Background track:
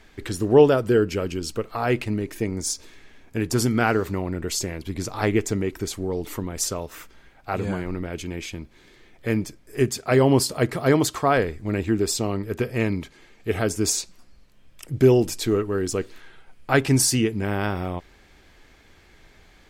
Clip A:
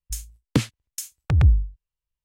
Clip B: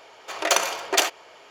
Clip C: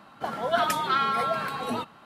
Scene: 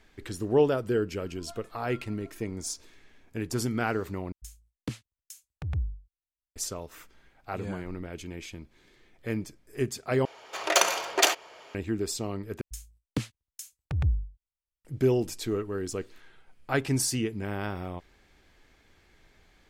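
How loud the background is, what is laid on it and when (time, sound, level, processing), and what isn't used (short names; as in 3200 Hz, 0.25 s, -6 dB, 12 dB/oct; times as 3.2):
background track -8 dB
0.94 add C -18 dB + metallic resonator 340 Hz, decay 0.22 s, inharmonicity 0.002
4.32 replace with A -14.5 dB
10.25 replace with B -1.5 dB
12.61 replace with A -10 dB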